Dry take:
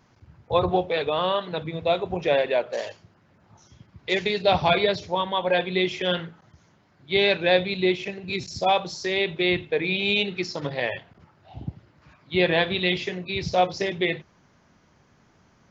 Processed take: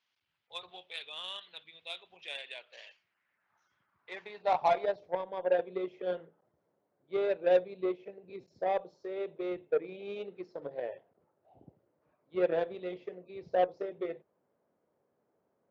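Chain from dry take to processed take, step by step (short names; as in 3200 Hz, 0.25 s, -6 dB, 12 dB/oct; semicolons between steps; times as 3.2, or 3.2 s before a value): band-pass sweep 3200 Hz -> 500 Hz, 2.6–5.34; added harmonics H 7 -24 dB, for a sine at -12 dBFS; gain -3 dB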